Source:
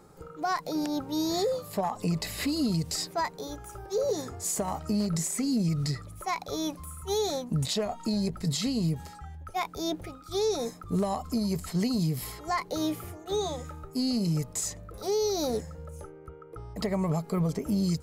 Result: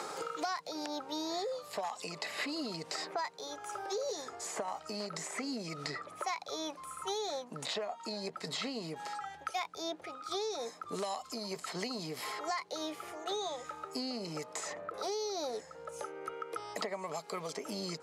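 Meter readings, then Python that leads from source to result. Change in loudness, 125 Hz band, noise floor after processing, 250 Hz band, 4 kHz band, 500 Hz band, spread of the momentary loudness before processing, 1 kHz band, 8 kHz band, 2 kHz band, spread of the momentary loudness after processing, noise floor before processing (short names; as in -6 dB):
-8.5 dB, -20.0 dB, -53 dBFS, -14.0 dB, -4.0 dB, -7.5 dB, 10 LU, -4.0 dB, -8.5 dB, -1.0 dB, 5 LU, -48 dBFS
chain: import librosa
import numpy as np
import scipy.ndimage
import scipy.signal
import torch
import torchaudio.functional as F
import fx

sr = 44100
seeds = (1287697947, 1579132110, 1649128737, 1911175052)

y = scipy.signal.sosfilt(scipy.signal.butter(2, 590.0, 'highpass', fs=sr, output='sos'), x)
y = fx.air_absorb(y, sr, metres=67.0)
y = fx.band_squash(y, sr, depth_pct=100)
y = y * librosa.db_to_amplitude(-2.5)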